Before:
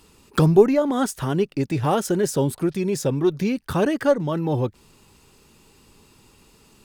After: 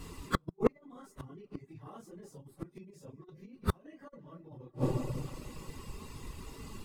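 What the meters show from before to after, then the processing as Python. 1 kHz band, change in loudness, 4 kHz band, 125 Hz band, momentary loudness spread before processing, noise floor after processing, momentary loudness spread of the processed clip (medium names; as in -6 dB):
-15.5 dB, -17.5 dB, -15.0 dB, -15.0 dB, 8 LU, -65 dBFS, 19 LU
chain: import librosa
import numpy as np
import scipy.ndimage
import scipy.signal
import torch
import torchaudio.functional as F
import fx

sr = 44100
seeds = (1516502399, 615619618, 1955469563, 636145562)

y = fx.phase_scramble(x, sr, seeds[0], window_ms=100)
y = fx.low_shelf(y, sr, hz=500.0, db=5.5)
y = fx.rev_freeverb(y, sr, rt60_s=1.9, hf_ratio=0.8, predelay_ms=10, drr_db=10.5)
y = fx.over_compress(y, sr, threshold_db=-17.0, ratio=-0.5)
y = fx.gate_flip(y, sr, shuts_db=-14.0, range_db=-34)
y = fx.low_shelf(y, sr, hz=93.0, db=8.0)
y = fx.small_body(y, sr, hz=(1100.0, 2000.0), ring_ms=30, db=11)
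y = fx.dereverb_blind(y, sr, rt60_s=0.53)
y = y * librosa.db_to_amplitude(1.0)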